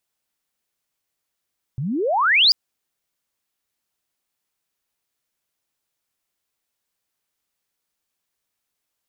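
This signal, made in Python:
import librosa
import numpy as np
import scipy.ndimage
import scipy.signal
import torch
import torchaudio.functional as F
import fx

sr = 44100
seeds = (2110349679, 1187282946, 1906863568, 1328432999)

y = fx.chirp(sr, length_s=0.74, from_hz=120.0, to_hz=5100.0, law='logarithmic', from_db=-23.0, to_db=-10.0)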